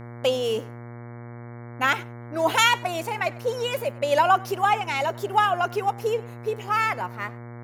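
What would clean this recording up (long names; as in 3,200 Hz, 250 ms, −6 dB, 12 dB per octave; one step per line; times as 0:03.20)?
hum removal 119.1 Hz, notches 19
echo removal 99 ms −22.5 dB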